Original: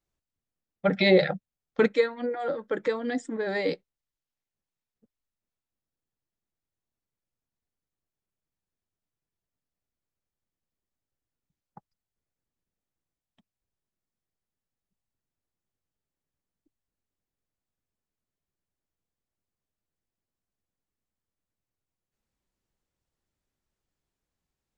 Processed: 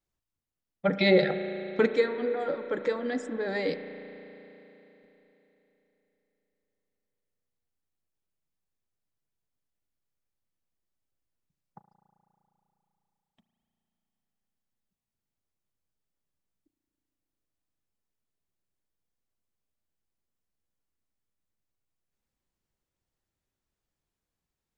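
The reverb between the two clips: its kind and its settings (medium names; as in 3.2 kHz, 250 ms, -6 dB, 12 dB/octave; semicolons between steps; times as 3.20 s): spring tank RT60 3.7 s, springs 35 ms, chirp 65 ms, DRR 8.5 dB; trim -2 dB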